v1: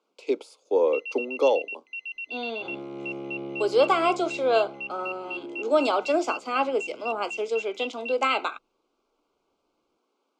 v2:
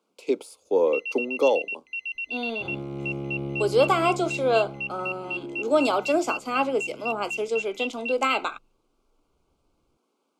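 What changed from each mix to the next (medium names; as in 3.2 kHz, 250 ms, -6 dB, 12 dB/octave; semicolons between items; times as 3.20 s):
first sound +3.5 dB; master: remove three-band isolator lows -20 dB, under 240 Hz, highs -20 dB, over 7.4 kHz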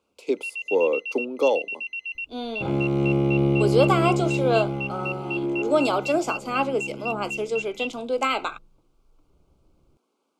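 first sound: entry -0.50 s; second sound +8.0 dB; reverb: on, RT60 2.6 s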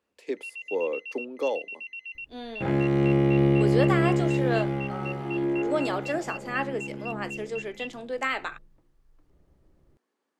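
speech -7.0 dB; first sound -7.0 dB; master: remove Butterworth band-stop 1.8 kHz, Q 2.4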